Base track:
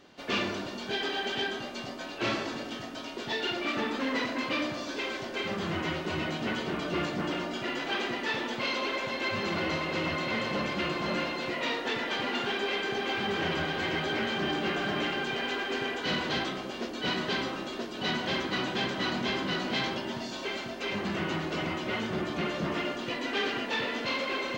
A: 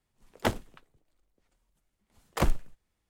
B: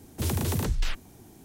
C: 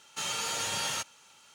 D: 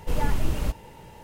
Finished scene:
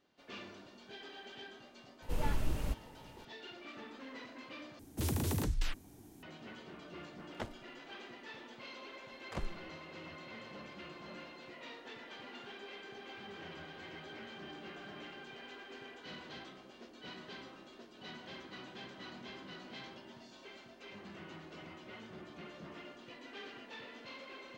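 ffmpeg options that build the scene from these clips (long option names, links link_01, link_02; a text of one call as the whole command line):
ffmpeg -i bed.wav -i cue0.wav -i cue1.wav -i cue2.wav -i cue3.wav -filter_complex "[0:a]volume=-18.5dB[link_01];[2:a]equalizer=frequency=290:width=6:gain=7.5[link_02];[1:a]acrossover=split=7600[link_03][link_04];[link_04]acompressor=threshold=-56dB:ratio=4:attack=1:release=60[link_05];[link_03][link_05]amix=inputs=2:normalize=0[link_06];[link_01]asplit=2[link_07][link_08];[link_07]atrim=end=4.794[link_09];[link_02]atrim=end=1.44,asetpts=PTS-STARTPTS,volume=-7dB[link_10];[link_08]atrim=start=6.226[link_11];[4:a]atrim=end=1.23,asetpts=PTS-STARTPTS,volume=-9.5dB,afade=type=in:duration=0.004:curve=hsin,afade=type=out:start_time=1.226:duration=0.004:curve=hsin,adelay=2020[link_12];[link_06]atrim=end=3.09,asetpts=PTS-STARTPTS,volume=-15dB,afade=type=in:duration=0.004:curve=hsin,afade=type=out:start_time=3.086:duration=0.004:curve=hsin,adelay=6950[link_13];[link_09][link_10]acrossfade=duration=0.004:curve1=hsin:curve2=hsin[link_14];[link_14][link_11]acrossfade=duration=0.004:curve1=hsin:curve2=hsin[link_15];[link_15][link_12][link_13]amix=inputs=3:normalize=0" out.wav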